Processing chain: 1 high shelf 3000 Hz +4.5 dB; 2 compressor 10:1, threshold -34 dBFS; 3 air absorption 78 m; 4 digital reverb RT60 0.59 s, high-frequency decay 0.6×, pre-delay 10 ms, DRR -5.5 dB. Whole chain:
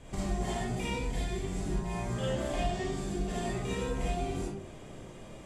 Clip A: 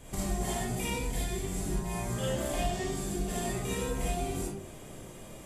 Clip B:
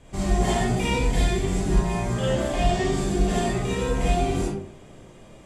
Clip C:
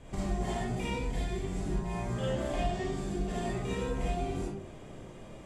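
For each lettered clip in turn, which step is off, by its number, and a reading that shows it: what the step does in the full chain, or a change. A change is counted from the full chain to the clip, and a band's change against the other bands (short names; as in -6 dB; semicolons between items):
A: 3, 8 kHz band +7.5 dB; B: 2, mean gain reduction 8.0 dB; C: 1, 8 kHz band -3.5 dB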